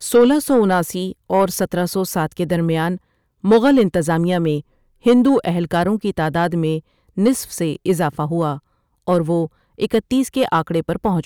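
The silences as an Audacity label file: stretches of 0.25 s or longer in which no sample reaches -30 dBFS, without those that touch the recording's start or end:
2.970000	3.440000	silence
4.610000	5.060000	silence
6.800000	7.180000	silence
8.580000	9.070000	silence
9.470000	9.800000	silence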